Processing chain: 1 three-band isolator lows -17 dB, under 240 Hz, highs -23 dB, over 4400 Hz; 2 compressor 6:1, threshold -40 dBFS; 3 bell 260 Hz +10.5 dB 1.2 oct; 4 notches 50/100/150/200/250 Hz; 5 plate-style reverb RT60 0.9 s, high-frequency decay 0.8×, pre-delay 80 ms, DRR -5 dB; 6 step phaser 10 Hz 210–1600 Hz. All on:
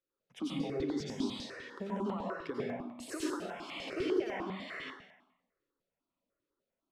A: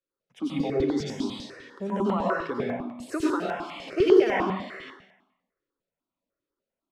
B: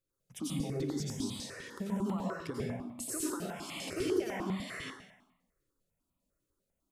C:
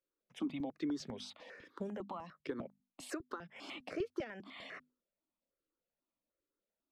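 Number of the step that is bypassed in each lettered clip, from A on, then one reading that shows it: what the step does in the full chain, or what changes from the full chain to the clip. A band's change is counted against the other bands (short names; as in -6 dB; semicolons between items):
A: 2, crest factor change +2.0 dB; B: 1, 8 kHz band +10.0 dB; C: 5, momentary loudness spread change +2 LU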